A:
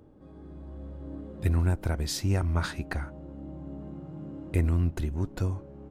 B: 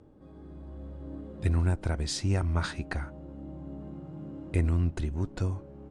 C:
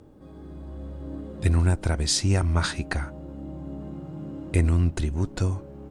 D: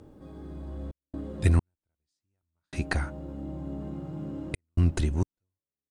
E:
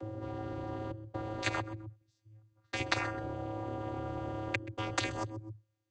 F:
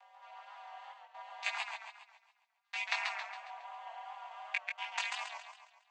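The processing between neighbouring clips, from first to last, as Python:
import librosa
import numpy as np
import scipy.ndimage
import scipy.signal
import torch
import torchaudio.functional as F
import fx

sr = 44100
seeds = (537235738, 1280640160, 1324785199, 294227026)

y1 = scipy.signal.sosfilt(scipy.signal.cheby1(4, 1.0, 9300.0, 'lowpass', fs=sr, output='sos'), x)
y2 = fx.high_shelf(y1, sr, hz=4300.0, db=8.0)
y2 = y2 * librosa.db_to_amplitude(5.0)
y3 = fx.step_gate(y2, sr, bpm=66, pattern='xxxx.xx.....xxxx', floor_db=-60.0, edge_ms=4.5)
y4 = fx.vocoder(y3, sr, bands=16, carrier='square', carrier_hz=108.0)
y4 = fx.echo_feedback(y4, sr, ms=129, feedback_pct=25, wet_db=-21.5)
y4 = fx.spectral_comp(y4, sr, ratio=10.0)
y4 = y4 * librosa.db_to_amplitude(-1.0)
y5 = fx.chorus_voices(y4, sr, voices=4, hz=0.35, base_ms=20, depth_ms=4.0, mix_pct=45)
y5 = scipy.signal.sosfilt(scipy.signal.cheby1(6, 9, 640.0, 'highpass', fs=sr, output='sos'), y5)
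y5 = fx.echo_warbled(y5, sr, ms=137, feedback_pct=47, rate_hz=2.8, cents=111, wet_db=-4.5)
y5 = y5 * librosa.db_to_amplitude(5.0)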